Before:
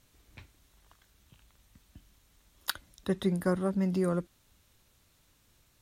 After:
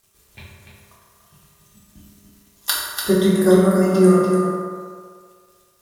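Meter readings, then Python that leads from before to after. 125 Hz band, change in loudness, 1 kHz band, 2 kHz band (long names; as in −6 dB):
+12.5 dB, +14.5 dB, +16.0 dB, +13.0 dB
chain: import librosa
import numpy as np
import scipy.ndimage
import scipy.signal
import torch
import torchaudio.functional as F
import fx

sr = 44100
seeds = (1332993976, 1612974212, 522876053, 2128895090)

p1 = fx.quant_dither(x, sr, seeds[0], bits=10, dither='none')
p2 = fx.peak_eq(p1, sr, hz=11000.0, db=7.5, octaves=1.9)
p3 = fx.noise_reduce_blind(p2, sr, reduce_db=9)
p4 = p3 + fx.echo_single(p3, sr, ms=291, db=-6.0, dry=0)
p5 = fx.rev_fdn(p4, sr, rt60_s=1.9, lf_ratio=0.7, hf_ratio=0.45, size_ms=15.0, drr_db=-7.5)
y = F.gain(torch.from_numpy(p5), 5.0).numpy()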